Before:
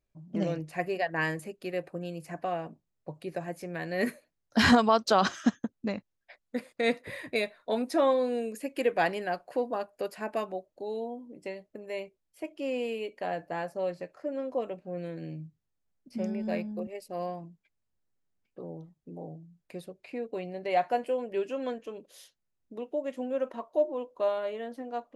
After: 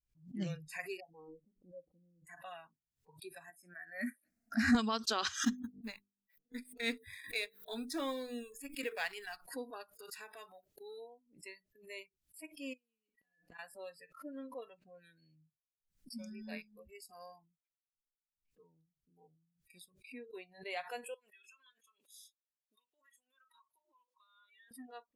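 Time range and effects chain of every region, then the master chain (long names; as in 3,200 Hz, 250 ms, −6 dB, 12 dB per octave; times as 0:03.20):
0:01.00–0:02.27: Gaussian smoothing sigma 14 samples + comb filter 3.9 ms, depth 80%
0:03.50–0:04.75: high-pass filter 120 Hz + high-shelf EQ 3,700 Hz −9 dB + phaser with its sweep stopped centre 660 Hz, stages 8
0:05.43–0:09.37: mu-law and A-law mismatch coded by A + mains-hum notches 50/100/150/200/250/300/350/400/450 Hz
0:09.94–0:10.98: leveller curve on the samples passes 1 + downward compressor 12 to 1, threshold −32 dBFS + low-shelf EQ 62 Hz −10.5 dB
0:12.73–0:13.59: comb filter 4.1 ms, depth 70% + gate with flip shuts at −31 dBFS, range −25 dB
0:21.14–0:24.71: high-pass filter 1,100 Hz + downward compressor 4 to 1, threshold −50 dBFS
whole clip: noise reduction from a noise print of the clip's start 26 dB; guitar amp tone stack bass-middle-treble 6-0-2; background raised ahead of every attack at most 140 dB per second; level +13.5 dB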